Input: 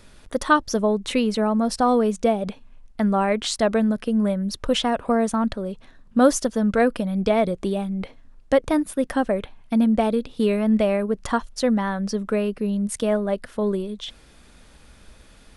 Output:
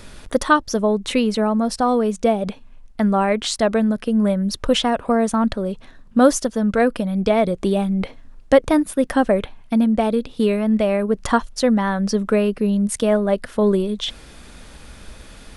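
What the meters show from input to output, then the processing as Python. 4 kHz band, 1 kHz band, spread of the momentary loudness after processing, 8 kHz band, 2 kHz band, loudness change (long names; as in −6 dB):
+3.5 dB, +2.5 dB, 6 LU, +3.0 dB, +3.0 dB, +3.0 dB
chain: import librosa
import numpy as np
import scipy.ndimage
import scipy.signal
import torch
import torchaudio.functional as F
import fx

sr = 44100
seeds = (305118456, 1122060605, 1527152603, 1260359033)

y = fx.rider(x, sr, range_db=10, speed_s=0.5)
y = F.gain(torch.from_numpy(y), 3.0).numpy()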